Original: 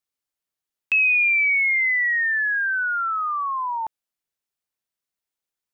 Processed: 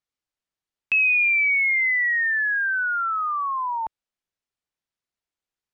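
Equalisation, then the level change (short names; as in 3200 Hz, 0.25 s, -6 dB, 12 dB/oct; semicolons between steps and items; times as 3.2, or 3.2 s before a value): air absorption 62 m; low shelf 110 Hz +5.5 dB; 0.0 dB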